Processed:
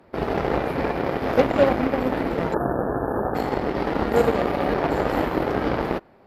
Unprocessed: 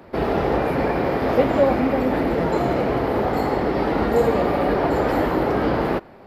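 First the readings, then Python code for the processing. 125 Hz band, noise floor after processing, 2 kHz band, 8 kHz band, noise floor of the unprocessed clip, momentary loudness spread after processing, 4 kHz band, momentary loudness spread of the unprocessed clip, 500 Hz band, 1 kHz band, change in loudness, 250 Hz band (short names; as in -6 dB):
-3.0 dB, -53 dBFS, -1.5 dB, n/a, -45 dBFS, 5 LU, -1.0 dB, 3 LU, -2.5 dB, -2.5 dB, -2.5 dB, -3.0 dB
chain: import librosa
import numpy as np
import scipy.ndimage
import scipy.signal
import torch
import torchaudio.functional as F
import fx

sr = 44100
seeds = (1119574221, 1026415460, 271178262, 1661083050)

y = fx.cheby_harmonics(x, sr, harmonics=(7,), levels_db=(-21,), full_scale_db=-4.5)
y = fx.spec_erase(y, sr, start_s=2.54, length_s=0.81, low_hz=1800.0, high_hz=9400.0)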